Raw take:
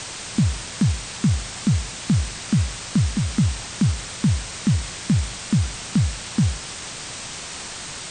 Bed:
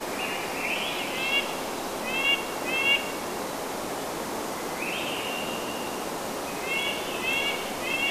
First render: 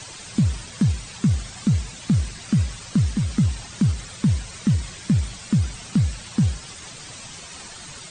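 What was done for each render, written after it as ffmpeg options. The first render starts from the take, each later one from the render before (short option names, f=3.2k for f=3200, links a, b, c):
-af "afftdn=nr=10:nf=-34"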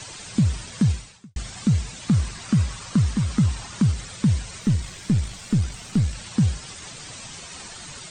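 -filter_complex "[0:a]asettb=1/sr,asplit=3[a][b][c];[a]atrim=end=2.084[d];[b]atrim=start=2.08:end=3.84,asetpts=PTS-STARTPTS,afade=t=in:d=0.004:c=qsin,afade=t=out:st=1.756:d=0.004:c=qsin,equalizer=f=1.1k:t=o:w=0.77:g=5.5[e];[c]atrim=start=3.836[f];[d][e]acrossfade=d=0.004:c1=hsin:c2=qsin[g];[g][f]acrossfade=d=0.004:c1=qsin:c2=hsin,asettb=1/sr,asplit=3[h][i][j];[h]atrim=end=4.604[k];[i]atrim=start=4.6:end=6.15,asetpts=PTS-STARTPTS,afade=t=in:d=0.004:c=qsin,afade=t=out:st=1.546:d=0.004:c=qsin,aeval=exprs='if(lt(val(0),0),0.708*val(0),val(0))':c=same[l];[j]atrim=start=6.146[m];[k][l]acrossfade=d=0.004:c1=hsin:c2=qsin[n];[n][m]acrossfade=d=0.004:c1=qsin:c2=hsin,asplit=2[o][p];[o]atrim=end=1.36,asetpts=PTS-STARTPTS,afade=t=out:st=0.92:d=0.44:c=qua[q];[p]atrim=start=1.36,asetpts=PTS-STARTPTS,afade=t=in:d=0.004:c=hsin[r];[q][r]concat=n=2:v=0:a=1"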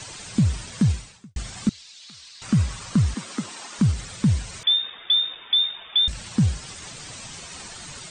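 -filter_complex "[0:a]asettb=1/sr,asplit=3[a][b][c];[a]atrim=end=1.694[d];[b]atrim=start=1.69:end=2.42,asetpts=PTS-STARTPTS,afade=t=in:d=0.004:c=qsin,afade=t=out:st=0.726:d=0.004:c=qsin,bandpass=f=4.2k:t=q:w=2.3[e];[c]atrim=start=2.416[f];[d][e]acrossfade=d=0.004:c1=hsin:c2=qsin[g];[g][f]acrossfade=d=0.004:c1=qsin:c2=hsin,asettb=1/sr,asplit=3[h][i][j];[h]atrim=end=3.144[k];[i]atrim=start=3.14:end=3.79,asetpts=PTS-STARTPTS,afade=t=in:d=0.004:c=qsin,afade=t=out:st=0.646:d=0.004:c=qsin,highpass=f=260:w=0.5412,highpass=f=260:w=1.3066[l];[j]atrim=start=3.786[m];[k][l]acrossfade=d=0.004:c1=hsin:c2=qsin[n];[n][m]acrossfade=d=0.004:c1=qsin:c2=hsin,asettb=1/sr,asplit=3[o][p][q];[o]atrim=end=4.634[r];[p]atrim=start=4.63:end=6.08,asetpts=PTS-STARTPTS,afade=t=in:d=0.004:c=qsin,afade=t=out:st=1.446:d=0.004:c=qsin,lowpass=f=3.1k:t=q:w=0.5098,lowpass=f=3.1k:t=q:w=0.6013,lowpass=f=3.1k:t=q:w=0.9,lowpass=f=3.1k:t=q:w=2.563,afreqshift=-3700[s];[q]atrim=start=6.076[t];[r][s]acrossfade=d=0.004:c1=hsin:c2=qsin[u];[u][t]acrossfade=d=0.004:c1=qsin:c2=hsin"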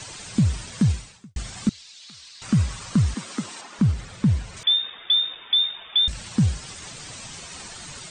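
-filter_complex "[0:a]asettb=1/sr,asplit=3[a][b][c];[a]atrim=end=3.614[d];[b]atrim=start=3.61:end=4.57,asetpts=PTS-STARTPTS,afade=t=in:d=0.004:c=qsin,afade=t=out:st=0.956:d=0.004:c=qsin,highshelf=f=3.8k:g=-10.5[e];[c]atrim=start=4.566[f];[d][e]acrossfade=d=0.004:c1=hsin:c2=qsin[g];[g][f]acrossfade=d=0.004:c1=qsin:c2=hsin"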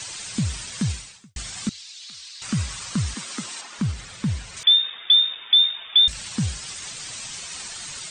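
-af "tiltshelf=f=1.2k:g=-5.5"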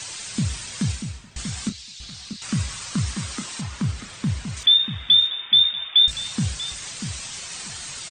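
-filter_complex "[0:a]asplit=2[a][b];[b]adelay=30,volume=-11dB[c];[a][c]amix=inputs=2:normalize=0,asplit=2[d][e];[e]adelay=639,lowpass=f=1.4k:p=1,volume=-8dB,asplit=2[f][g];[g]adelay=639,lowpass=f=1.4k:p=1,volume=0.21,asplit=2[h][i];[i]adelay=639,lowpass=f=1.4k:p=1,volume=0.21[j];[d][f][h][j]amix=inputs=4:normalize=0"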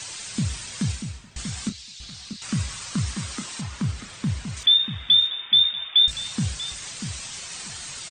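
-af "volume=-1.5dB"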